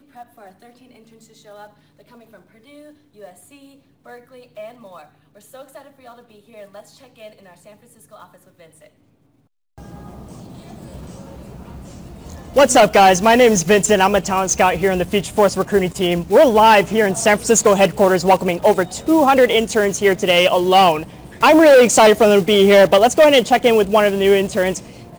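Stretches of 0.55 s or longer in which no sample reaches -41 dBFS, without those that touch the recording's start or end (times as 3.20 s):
8.87–9.78 s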